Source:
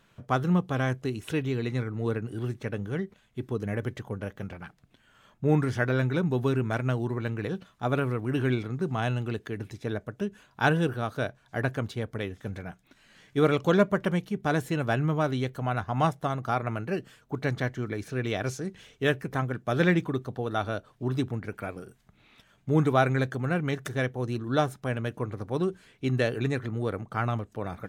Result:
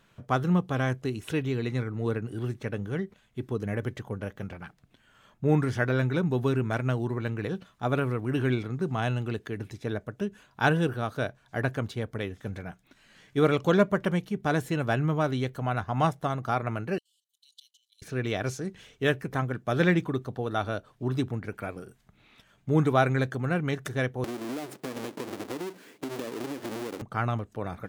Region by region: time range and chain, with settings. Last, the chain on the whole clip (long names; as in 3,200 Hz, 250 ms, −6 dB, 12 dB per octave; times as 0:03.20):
0:16.98–0:18.02: Chebyshev high-pass with heavy ripple 2,900 Hz, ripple 6 dB + output level in coarse steps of 12 dB
0:24.24–0:27.02: each half-wave held at its own peak + high-pass with resonance 290 Hz, resonance Q 2.3 + downward compressor 16 to 1, threshold −30 dBFS
whole clip: no processing